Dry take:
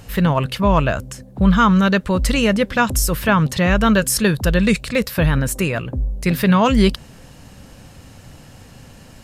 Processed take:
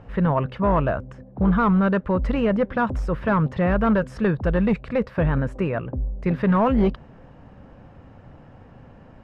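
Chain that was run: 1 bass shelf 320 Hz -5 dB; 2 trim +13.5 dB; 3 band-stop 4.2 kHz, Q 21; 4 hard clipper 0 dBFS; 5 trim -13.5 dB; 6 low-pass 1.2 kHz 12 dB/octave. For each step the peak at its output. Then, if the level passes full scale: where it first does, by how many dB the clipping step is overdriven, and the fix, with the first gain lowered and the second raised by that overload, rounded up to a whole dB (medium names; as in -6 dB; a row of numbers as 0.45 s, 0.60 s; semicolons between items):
-3.5 dBFS, +10.0 dBFS, +10.0 dBFS, 0.0 dBFS, -13.5 dBFS, -13.0 dBFS; step 2, 10.0 dB; step 2 +3.5 dB, step 5 -3.5 dB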